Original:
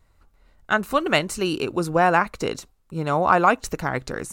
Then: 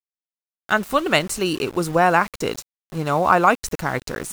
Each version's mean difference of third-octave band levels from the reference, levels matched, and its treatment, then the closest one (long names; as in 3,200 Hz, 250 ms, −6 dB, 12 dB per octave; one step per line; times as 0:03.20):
3.5 dB: high-shelf EQ 6,400 Hz +5.5 dB
centre clipping without the shift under −34.5 dBFS
level +1.5 dB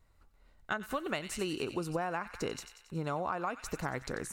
5.5 dB: on a send: delay with a high-pass on its return 92 ms, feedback 59%, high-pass 1,900 Hz, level −11 dB
on the sum: downward compressor 12 to 1, threshold −24 dBFS, peak gain reduction 13.5 dB
level −6.5 dB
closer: first